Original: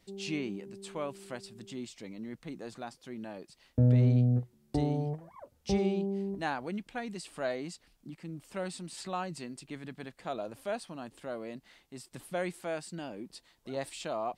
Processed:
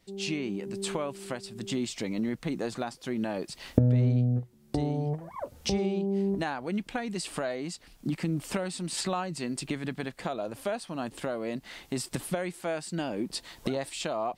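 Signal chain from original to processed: recorder AGC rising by 27 dB/s

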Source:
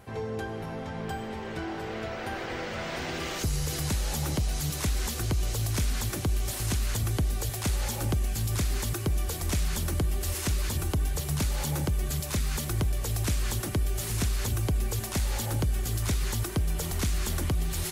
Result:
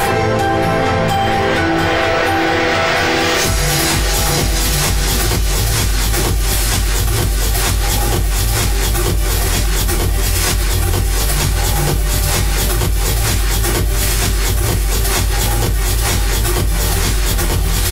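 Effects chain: bass shelf 430 Hz -11 dB; on a send: feedback delay 692 ms, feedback 51%, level -5.5 dB; on the sum: simulated room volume 200 m³, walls furnished, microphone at 4.6 m; level flattener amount 100%; trim +1.5 dB

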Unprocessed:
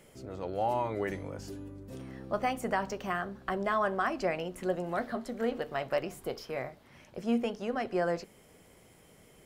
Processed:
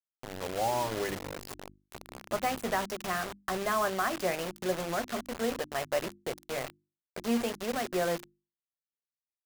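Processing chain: bit crusher 6-bit; hum notches 50/100/150/200/250/300/350 Hz

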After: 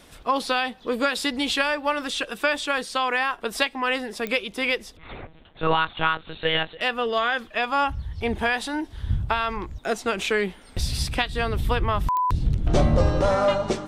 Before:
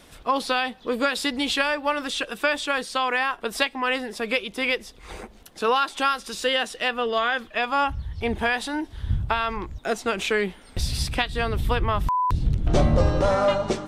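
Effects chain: 4.97–6.81 s: monotone LPC vocoder at 8 kHz 160 Hz; clicks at 4.27/12.17 s, -15 dBFS

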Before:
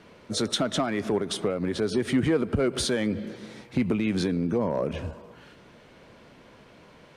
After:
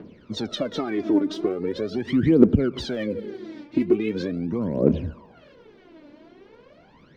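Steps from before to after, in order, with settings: low-pass 5.3 kHz 24 dB/octave; peaking EQ 290 Hz +12 dB 1.9 oct; phaser 0.41 Hz, delay 3.5 ms, feedback 79%; trim -8 dB

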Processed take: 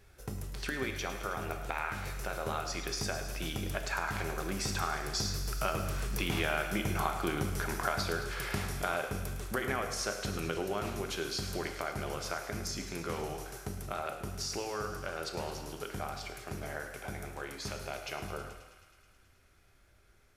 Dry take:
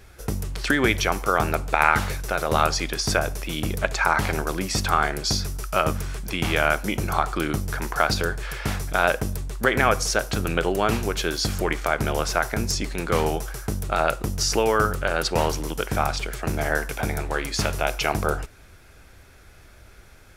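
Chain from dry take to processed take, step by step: Doppler pass-by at 7.12 s, 7 m/s, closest 6.7 m; compression 3:1, threshold -40 dBFS, peak gain reduction 18 dB; thinning echo 107 ms, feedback 78%, high-pass 580 Hz, level -13 dB; gated-style reverb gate 370 ms falling, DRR 5.5 dB; trim +5.5 dB

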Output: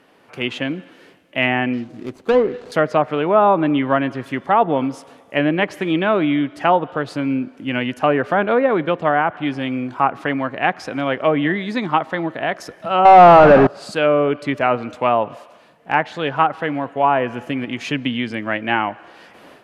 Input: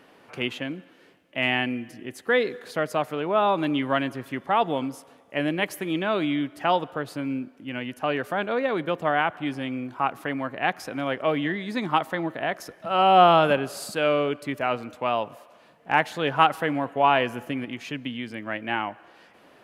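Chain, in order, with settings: 1.73–2.72 s: median filter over 25 samples; level rider gain up to 11.5 dB; 13.05–13.67 s: power-law waveshaper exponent 0.35; low-pass that closes with the level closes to 1.5 kHz, closed at -11 dBFS

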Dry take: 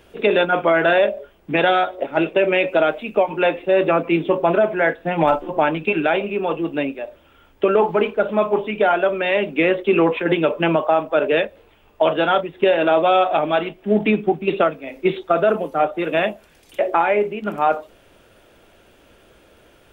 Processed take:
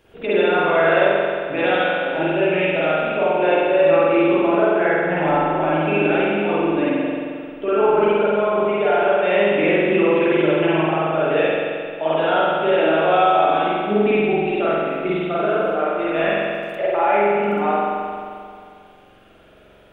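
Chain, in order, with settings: peak limiter -8.5 dBFS, peak gain reduction 4.5 dB; spring tank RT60 2.2 s, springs 44 ms, chirp 35 ms, DRR -9.5 dB; trim -8 dB

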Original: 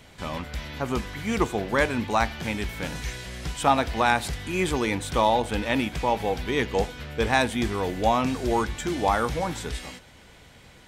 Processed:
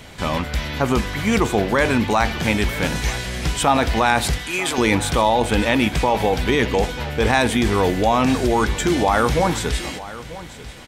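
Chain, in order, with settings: in parallel at 0 dB: compressor with a negative ratio -26 dBFS, ratio -0.5; 4.38–4.78 s: on the sum: high-pass 980 Hz 6 dB/octave; delay 939 ms -16.5 dB; trim +2.5 dB

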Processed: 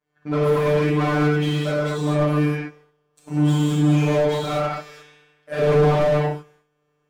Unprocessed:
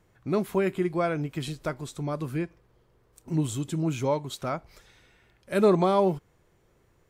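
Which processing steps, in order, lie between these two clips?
expander -51 dBFS; robot voice 149 Hz; overdrive pedal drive 27 dB, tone 1.9 kHz, clips at -9.5 dBFS; gated-style reverb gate 260 ms flat, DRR -7 dB; slew-rate limiter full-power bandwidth 180 Hz; trim -5.5 dB

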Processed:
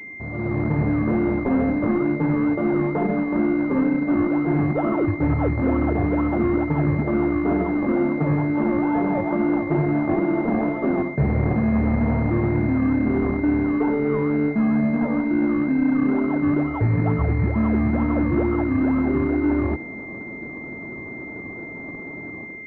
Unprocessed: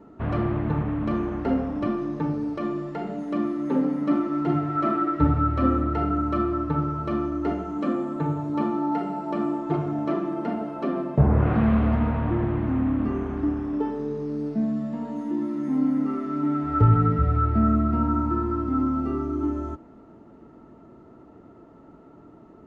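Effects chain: high-pass 75 Hz 12 dB/octave; reverse; compression 6:1, threshold -30 dBFS, peak gain reduction 15.5 dB; reverse; decimation with a swept rate 24×, swing 60% 2.2 Hz; level rider gain up to 13 dB; hard clipper -13 dBFS, distortion -26 dB; class-D stage that switches slowly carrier 2.1 kHz

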